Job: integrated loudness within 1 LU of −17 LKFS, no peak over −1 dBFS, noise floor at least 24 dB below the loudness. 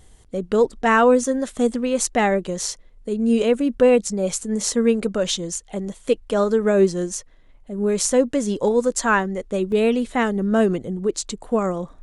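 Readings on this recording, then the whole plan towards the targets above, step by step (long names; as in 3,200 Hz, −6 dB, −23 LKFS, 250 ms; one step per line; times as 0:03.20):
number of dropouts 1; longest dropout 1.6 ms; integrated loudness −20.5 LKFS; sample peak −5.0 dBFS; target loudness −17.0 LKFS
→ repair the gap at 0:09.72, 1.6 ms
level +3.5 dB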